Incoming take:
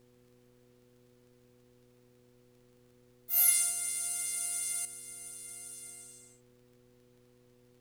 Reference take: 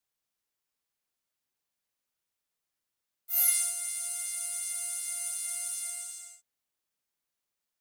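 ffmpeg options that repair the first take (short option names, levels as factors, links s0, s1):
-af "adeclick=t=4,bandreject=f=122.8:t=h:w=4,bandreject=f=245.6:t=h:w=4,bandreject=f=368.4:t=h:w=4,bandreject=f=491.2:t=h:w=4,agate=range=0.0891:threshold=0.00158,asetnsamples=n=441:p=0,asendcmd='4.85 volume volume 11dB',volume=1"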